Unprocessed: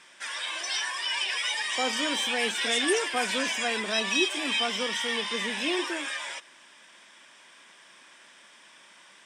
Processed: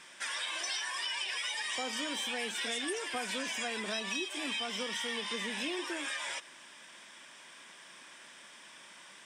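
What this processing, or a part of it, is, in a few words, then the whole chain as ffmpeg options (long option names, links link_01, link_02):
ASMR close-microphone chain: -af "lowshelf=frequency=140:gain=7,acompressor=threshold=-34dB:ratio=6,highshelf=frequency=9500:gain=5.5"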